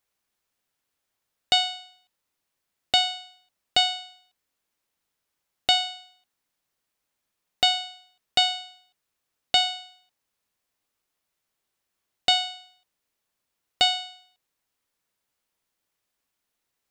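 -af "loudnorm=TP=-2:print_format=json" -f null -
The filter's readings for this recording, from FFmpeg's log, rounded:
"input_i" : "-23.5",
"input_tp" : "-5.7",
"input_lra" : "4.7",
"input_thresh" : "-35.8",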